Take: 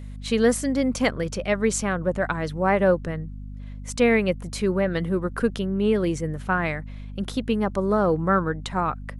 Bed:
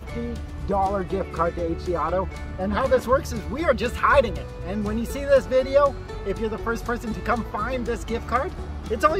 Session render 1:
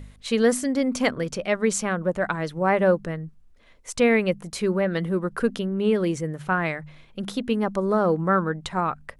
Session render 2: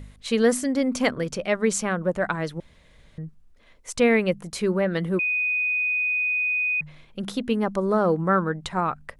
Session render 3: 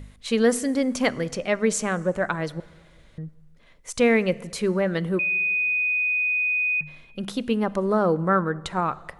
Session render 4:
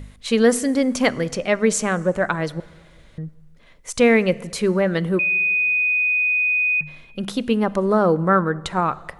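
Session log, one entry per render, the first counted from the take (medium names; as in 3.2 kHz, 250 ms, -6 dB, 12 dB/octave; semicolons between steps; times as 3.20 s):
de-hum 50 Hz, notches 5
2.60–3.18 s: room tone; 5.19–6.81 s: bleep 2.49 kHz -21 dBFS
plate-style reverb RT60 1.6 s, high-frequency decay 0.85×, DRR 18.5 dB
trim +4 dB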